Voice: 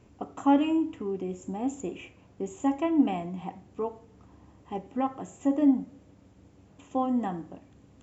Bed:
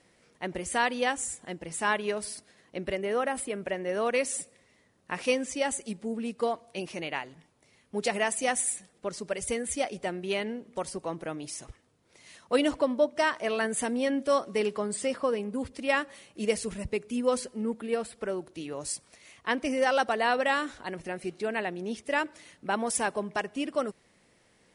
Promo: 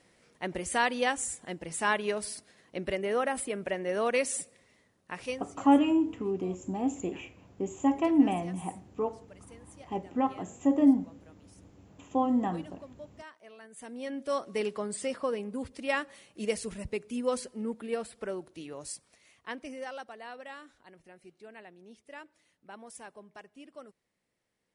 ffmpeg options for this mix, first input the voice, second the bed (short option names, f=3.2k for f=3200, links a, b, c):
-filter_complex "[0:a]adelay=5200,volume=0.5dB[a];[1:a]volume=18.5dB,afade=t=out:st=4.72:d=0.85:silence=0.0794328,afade=t=in:st=13.7:d=0.87:silence=0.112202,afade=t=out:st=18.29:d=1.79:silence=0.177828[b];[a][b]amix=inputs=2:normalize=0"